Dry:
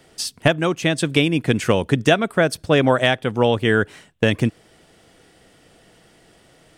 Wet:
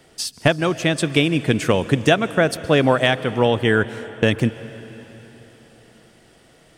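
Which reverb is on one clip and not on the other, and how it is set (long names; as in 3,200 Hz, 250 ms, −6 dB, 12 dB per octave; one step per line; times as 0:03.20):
dense smooth reverb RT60 4.1 s, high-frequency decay 0.9×, pre-delay 120 ms, DRR 15 dB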